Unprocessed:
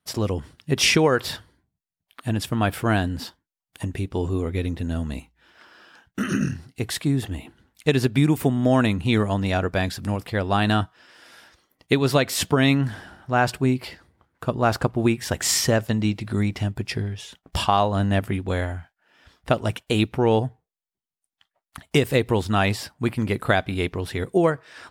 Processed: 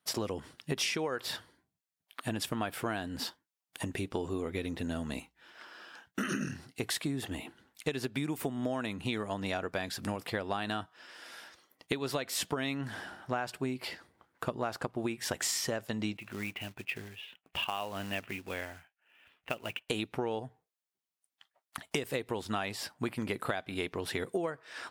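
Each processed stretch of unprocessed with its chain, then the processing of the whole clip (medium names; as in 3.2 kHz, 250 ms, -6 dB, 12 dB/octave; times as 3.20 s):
16.17–19.89 s: four-pole ladder low-pass 2.9 kHz, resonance 70% + short-mantissa float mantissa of 2-bit
whole clip: high-pass 140 Hz 6 dB/octave; bass shelf 190 Hz -8.5 dB; compression 10:1, threshold -30 dBFS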